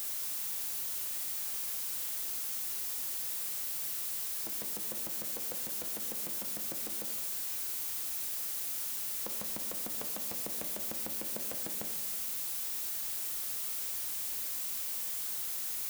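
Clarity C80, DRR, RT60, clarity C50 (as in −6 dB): 9.0 dB, 6.0 dB, 1.4 s, 7.5 dB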